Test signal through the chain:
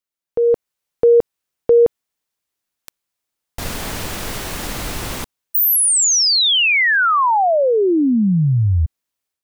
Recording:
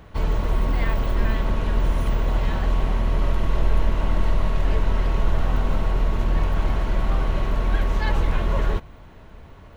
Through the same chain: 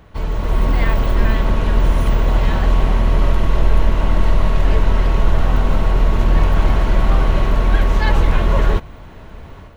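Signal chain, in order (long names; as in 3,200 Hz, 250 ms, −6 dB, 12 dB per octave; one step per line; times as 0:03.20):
automatic gain control gain up to 9 dB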